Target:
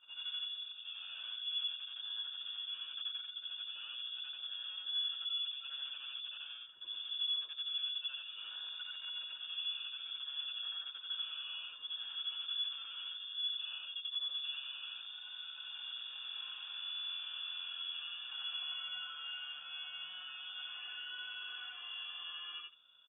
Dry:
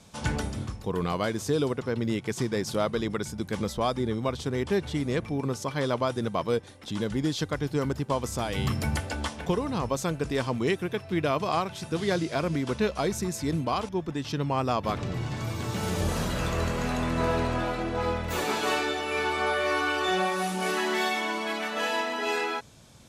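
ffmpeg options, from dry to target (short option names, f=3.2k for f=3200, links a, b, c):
-filter_complex "[0:a]afftfilt=real='re':imag='-im':win_size=8192:overlap=0.75,acrossover=split=2800[a][b];[b]acompressor=threshold=-51dB:ratio=4:attack=1:release=60[c];[a][c]amix=inputs=2:normalize=0,acrossover=split=810[d][e];[e]alimiter=level_in=8.5dB:limit=-24dB:level=0:latency=1:release=11,volume=-8.5dB[f];[d][f]amix=inputs=2:normalize=0,aeval=exprs='0.106*(cos(1*acos(clip(val(0)/0.106,-1,1)))-cos(1*PI/2))+0.00211*(cos(5*acos(clip(val(0)/0.106,-1,1)))-cos(5*PI/2))+0.015*(cos(6*acos(clip(val(0)/0.106,-1,1)))-cos(6*PI/2))+0.0015*(cos(7*acos(clip(val(0)/0.106,-1,1)))-cos(7*PI/2))+0.00422*(cos(8*acos(clip(val(0)/0.106,-1,1)))-cos(8*PI/2))':c=same,aresample=16000,asoftclip=type=tanh:threshold=-35dB,aresample=44100,asplit=3[g][h][i];[g]bandpass=f=300:t=q:w=8,volume=0dB[j];[h]bandpass=f=870:t=q:w=8,volume=-6dB[k];[i]bandpass=f=2.24k:t=q:w=8,volume=-9dB[l];[j][k][l]amix=inputs=3:normalize=0,lowpass=f=3.1k:t=q:w=0.5098,lowpass=f=3.1k:t=q:w=0.6013,lowpass=f=3.1k:t=q:w=0.9,lowpass=f=3.1k:t=q:w=2.563,afreqshift=-3700,volume=7dB"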